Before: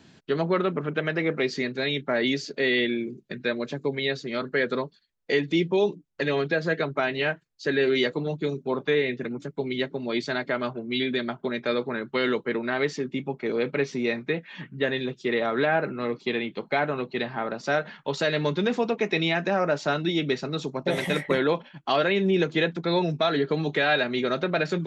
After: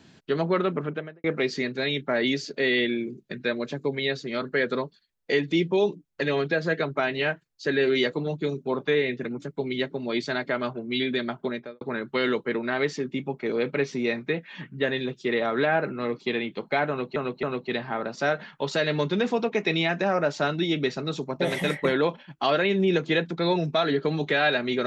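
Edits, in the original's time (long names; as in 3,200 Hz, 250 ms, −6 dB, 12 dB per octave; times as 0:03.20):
0:00.79–0:01.24: fade out and dull
0:11.45–0:11.81: fade out and dull
0:16.89–0:17.16: repeat, 3 plays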